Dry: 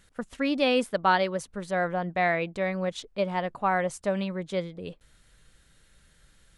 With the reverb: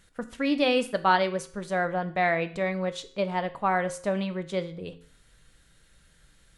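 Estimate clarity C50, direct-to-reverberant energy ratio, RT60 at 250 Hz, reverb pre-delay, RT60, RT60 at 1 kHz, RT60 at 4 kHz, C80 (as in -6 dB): 15.5 dB, 10.0 dB, 0.50 s, 4 ms, 0.50 s, 0.50 s, 0.50 s, 19.5 dB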